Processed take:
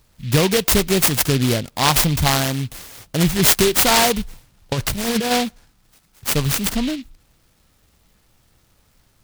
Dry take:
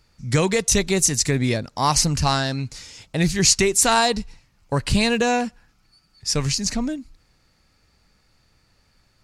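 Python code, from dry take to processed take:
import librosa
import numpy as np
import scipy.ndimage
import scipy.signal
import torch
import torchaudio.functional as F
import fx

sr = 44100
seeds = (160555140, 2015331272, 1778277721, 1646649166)

y = fx.over_compress(x, sr, threshold_db=-22.0, ratio=-0.5, at=(4.19, 5.3), fade=0.02)
y = fx.noise_mod_delay(y, sr, seeds[0], noise_hz=3000.0, depth_ms=0.13)
y = y * 10.0 ** (3.0 / 20.0)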